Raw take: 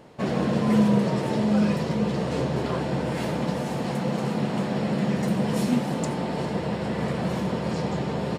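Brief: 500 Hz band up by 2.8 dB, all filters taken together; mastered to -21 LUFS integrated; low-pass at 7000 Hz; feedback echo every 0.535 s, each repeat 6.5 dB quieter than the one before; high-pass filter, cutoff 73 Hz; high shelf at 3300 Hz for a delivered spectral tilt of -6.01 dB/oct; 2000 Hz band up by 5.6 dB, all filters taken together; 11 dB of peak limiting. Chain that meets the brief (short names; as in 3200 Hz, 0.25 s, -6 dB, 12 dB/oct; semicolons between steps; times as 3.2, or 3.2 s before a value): HPF 73 Hz; LPF 7000 Hz; bell 500 Hz +3 dB; bell 2000 Hz +8.5 dB; high shelf 3300 Hz -6 dB; limiter -18.5 dBFS; feedback echo 0.535 s, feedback 47%, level -6.5 dB; gain +5.5 dB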